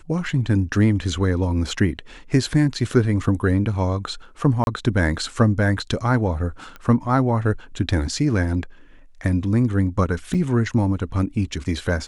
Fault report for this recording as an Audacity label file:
4.640000	4.670000	dropout 31 ms
6.760000	6.760000	pop -22 dBFS
10.340000	10.350000	dropout 5.5 ms

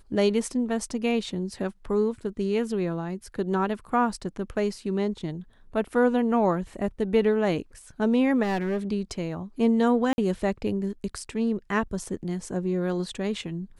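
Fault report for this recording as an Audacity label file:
8.420000	8.780000	clipped -22.5 dBFS
10.130000	10.180000	dropout 51 ms

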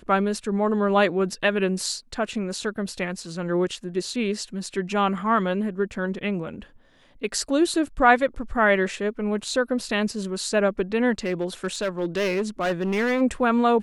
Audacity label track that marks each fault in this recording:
11.250000	13.220000	clipped -20 dBFS

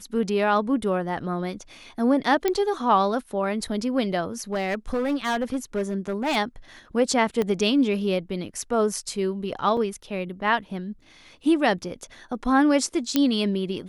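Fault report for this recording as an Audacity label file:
2.480000	2.480000	pop -9 dBFS
4.400000	6.370000	clipped -20.5 dBFS
7.420000	7.420000	pop -13 dBFS
9.770000	9.770000	dropout 3.2 ms
13.160000	13.160000	pop -6 dBFS

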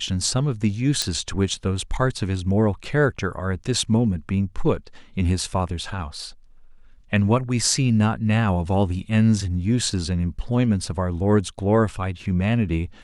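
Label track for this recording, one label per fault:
1.020000	1.020000	pop -8 dBFS

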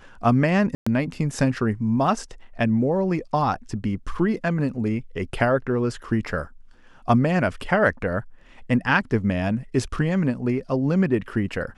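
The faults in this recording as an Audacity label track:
0.750000	0.860000	dropout 115 ms

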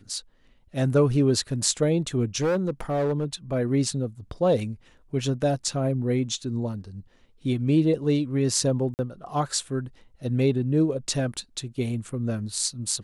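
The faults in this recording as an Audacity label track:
2.410000	3.250000	clipped -20 dBFS
8.940000	8.990000	dropout 49 ms

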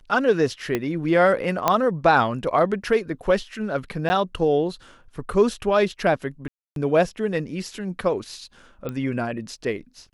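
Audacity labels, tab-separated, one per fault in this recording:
0.750000	0.750000	pop -10 dBFS
1.680000	1.680000	pop -4 dBFS
4.090000	4.100000	dropout 10 ms
6.480000	6.760000	dropout 282 ms
8.890000	8.890000	pop -18 dBFS

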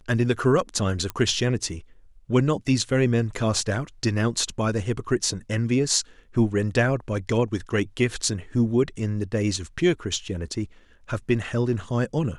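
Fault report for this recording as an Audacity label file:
1.100000	1.100000	pop -14 dBFS

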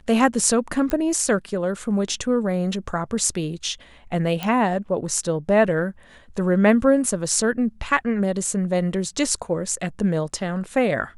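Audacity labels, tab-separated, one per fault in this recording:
0.900000	0.900000	pop -12 dBFS
4.430000	4.430000	pop -11 dBFS

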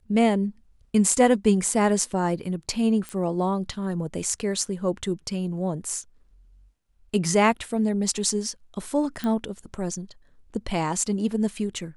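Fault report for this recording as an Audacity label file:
3.090000	3.090000	pop -19 dBFS
9.240000	9.240000	pop -16 dBFS

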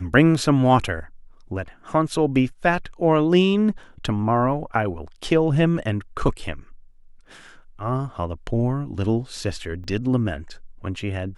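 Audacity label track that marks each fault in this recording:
9.840000	9.840000	dropout 4.8 ms

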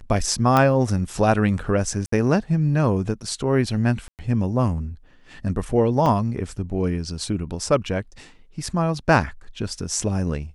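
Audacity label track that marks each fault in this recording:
0.570000	0.570000	pop -6 dBFS
2.060000	2.120000	dropout 64 ms
4.080000	4.190000	dropout 108 ms
6.060000	6.060000	dropout 3.2 ms

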